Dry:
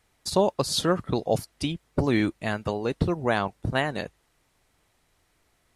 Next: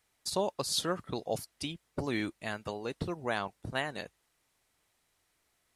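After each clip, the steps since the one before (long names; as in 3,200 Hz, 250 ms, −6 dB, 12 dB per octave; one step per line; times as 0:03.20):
spectral tilt +1.5 dB per octave
level −8 dB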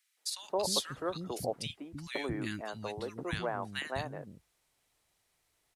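three-band delay without the direct sound highs, mids, lows 170/310 ms, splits 270/1,500 Hz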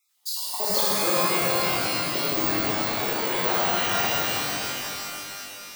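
time-frequency cells dropped at random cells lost 34%
bad sample-rate conversion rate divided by 2×, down filtered, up zero stuff
reverb with rising layers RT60 3.1 s, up +12 semitones, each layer −2 dB, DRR −7.5 dB
level +2 dB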